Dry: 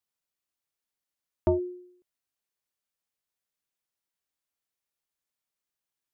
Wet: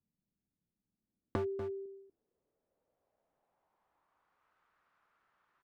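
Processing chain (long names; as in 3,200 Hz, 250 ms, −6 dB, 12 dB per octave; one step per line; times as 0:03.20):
wrong playback speed 44.1 kHz file played as 48 kHz
low-pass filter sweep 200 Hz → 1,300 Hz, 0:00.88–0:04.57
gain into a clipping stage and back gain 26 dB
single-tap delay 240 ms −13.5 dB
downward compressor 4 to 1, threshold −52 dBFS, peak gain reduction 19.5 dB
tilt shelving filter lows −4.5 dB, about 800 Hz
level +17 dB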